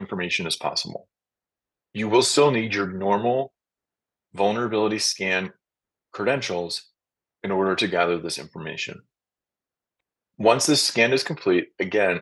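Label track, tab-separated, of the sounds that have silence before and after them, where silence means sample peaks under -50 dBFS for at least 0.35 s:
1.950000	3.480000	sound
4.340000	5.520000	sound
6.140000	6.870000	sound
7.430000	9.000000	sound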